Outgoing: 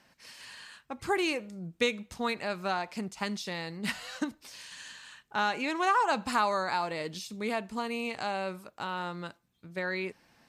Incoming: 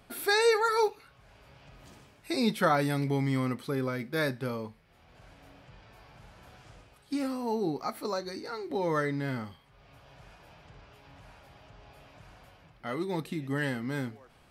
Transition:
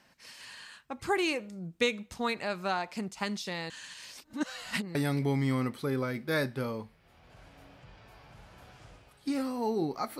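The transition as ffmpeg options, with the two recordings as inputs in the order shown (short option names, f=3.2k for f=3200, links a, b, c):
-filter_complex "[0:a]apad=whole_dur=10.19,atrim=end=10.19,asplit=2[a][b];[a]atrim=end=3.702[c];[b]atrim=start=3.698:end=4.952,asetpts=PTS-STARTPTS,areverse[d];[1:a]atrim=start=2.798:end=8.04[e];[c][d]acrossfade=d=0.004:c1=hsin:c2=hsin[f];[f][e]acrossfade=d=0.004:c1=hsin:c2=hsin"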